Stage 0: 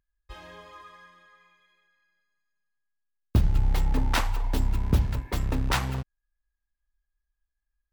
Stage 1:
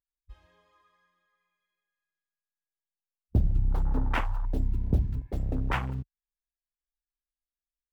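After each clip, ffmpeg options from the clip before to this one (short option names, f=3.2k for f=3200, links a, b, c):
-af "afwtdn=0.0224,volume=-2.5dB"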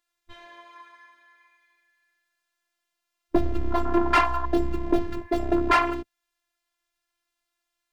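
-filter_complex "[0:a]afftfilt=real='hypot(re,im)*cos(PI*b)':imag='0':win_size=512:overlap=0.75,asplit=2[a][b];[b]highpass=f=720:p=1,volume=24dB,asoftclip=type=tanh:threshold=-13.5dB[c];[a][c]amix=inputs=2:normalize=0,lowpass=f=2.8k:p=1,volume=-6dB,volume=6.5dB"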